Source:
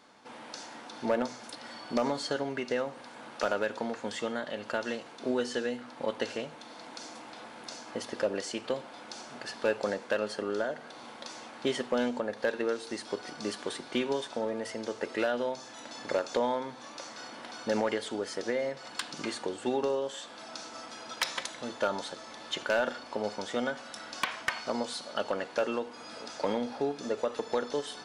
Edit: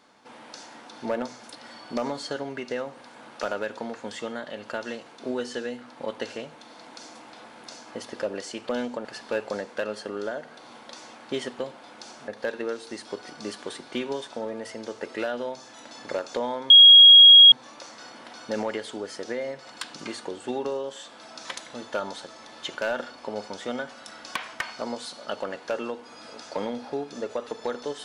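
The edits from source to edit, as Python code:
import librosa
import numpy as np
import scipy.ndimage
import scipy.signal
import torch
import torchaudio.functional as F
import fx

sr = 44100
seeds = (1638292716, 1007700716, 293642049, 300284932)

y = fx.edit(x, sr, fx.swap(start_s=8.69, length_s=0.69, other_s=11.92, other_length_s=0.36),
    fx.insert_tone(at_s=16.7, length_s=0.82, hz=3290.0, db=-7.0),
    fx.cut(start_s=20.63, length_s=0.7), tone=tone)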